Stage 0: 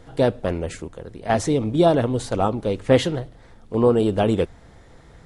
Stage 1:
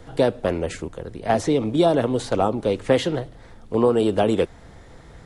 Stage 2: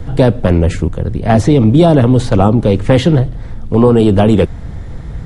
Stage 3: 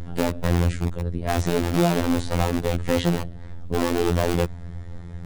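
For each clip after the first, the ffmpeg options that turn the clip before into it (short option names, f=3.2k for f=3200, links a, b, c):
-filter_complex "[0:a]acrossover=split=220|800|5600[a][b][c][d];[a]acompressor=threshold=-34dB:ratio=4[e];[b]acompressor=threshold=-19dB:ratio=4[f];[c]acompressor=threshold=-29dB:ratio=4[g];[d]acompressor=threshold=-44dB:ratio=4[h];[e][f][g][h]amix=inputs=4:normalize=0,volume=3dB"
-af "bass=f=250:g=14,treble=f=4k:g=-3,apsyclip=9.5dB,volume=-1.5dB"
-filter_complex "[0:a]asplit=2[a][b];[b]aeval=exprs='(mod(1.78*val(0)+1,2)-1)/1.78':c=same,volume=-6.5dB[c];[a][c]amix=inputs=2:normalize=0,afftfilt=real='hypot(re,im)*cos(PI*b)':imag='0':win_size=2048:overlap=0.75,volume=-10dB"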